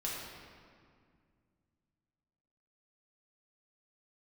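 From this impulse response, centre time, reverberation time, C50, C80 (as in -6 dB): 106 ms, 2.1 s, -1.0 dB, 1.0 dB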